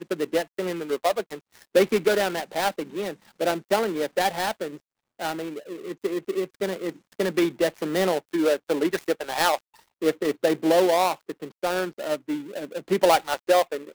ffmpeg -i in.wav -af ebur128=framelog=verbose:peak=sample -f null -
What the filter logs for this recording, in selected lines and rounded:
Integrated loudness:
  I:         -25.3 LUFS
  Threshold: -35.5 LUFS
Loudness range:
  LRA:         5.0 LU
  Threshold: -45.8 LUFS
  LRA low:   -28.8 LUFS
  LRA high:  -23.8 LUFS
Sample peak:
  Peak:       -8.3 dBFS